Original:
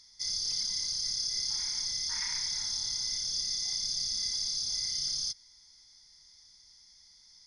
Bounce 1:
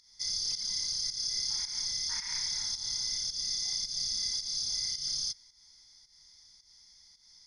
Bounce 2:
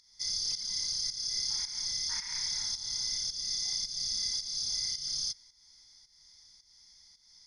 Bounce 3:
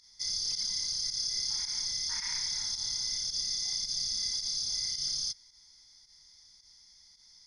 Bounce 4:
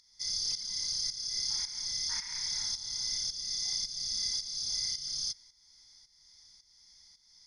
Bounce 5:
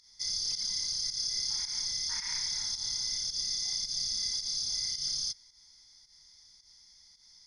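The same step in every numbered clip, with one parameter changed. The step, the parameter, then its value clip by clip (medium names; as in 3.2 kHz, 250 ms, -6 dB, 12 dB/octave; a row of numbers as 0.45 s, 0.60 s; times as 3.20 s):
volume shaper, release: 197 ms, 309 ms, 76 ms, 483 ms, 122 ms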